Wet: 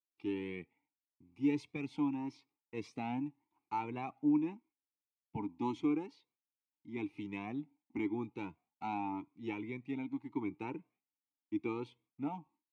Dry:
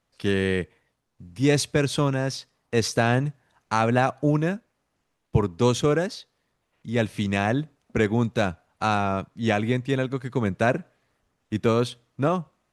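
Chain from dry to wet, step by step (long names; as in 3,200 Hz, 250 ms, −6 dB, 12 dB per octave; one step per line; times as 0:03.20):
noise gate with hold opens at −52 dBFS
formant filter u
flanger whose copies keep moving one way rising 0.87 Hz
level +2.5 dB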